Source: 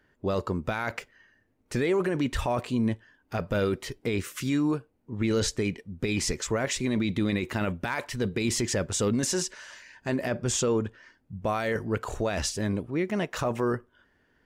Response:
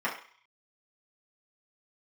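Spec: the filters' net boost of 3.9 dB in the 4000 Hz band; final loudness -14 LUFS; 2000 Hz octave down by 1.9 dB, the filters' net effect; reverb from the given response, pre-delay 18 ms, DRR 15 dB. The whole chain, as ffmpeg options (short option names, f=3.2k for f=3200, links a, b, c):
-filter_complex "[0:a]equalizer=f=2k:t=o:g=-4,equalizer=f=4k:t=o:g=6,asplit=2[a][b];[1:a]atrim=start_sample=2205,adelay=18[c];[b][c]afir=irnorm=-1:irlink=0,volume=-25dB[d];[a][d]amix=inputs=2:normalize=0,volume=14.5dB"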